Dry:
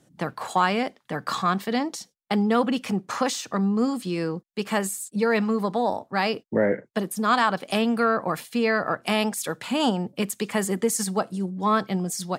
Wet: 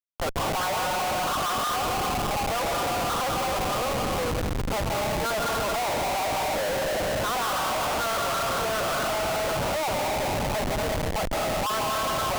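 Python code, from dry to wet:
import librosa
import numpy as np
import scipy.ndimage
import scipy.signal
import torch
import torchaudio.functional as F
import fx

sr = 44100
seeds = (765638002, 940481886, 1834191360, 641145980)

y = fx.spec_quant(x, sr, step_db=15)
y = scipy.signal.sosfilt(scipy.signal.cheby1(4, 1.0, [540.0, 1500.0], 'bandpass', fs=sr, output='sos'), y)
y = fx.rev_plate(y, sr, seeds[0], rt60_s=2.6, hf_ratio=0.85, predelay_ms=120, drr_db=1.5)
y = fx.schmitt(y, sr, flips_db=-37.5)
y = y * 10.0 ** (2.0 / 20.0)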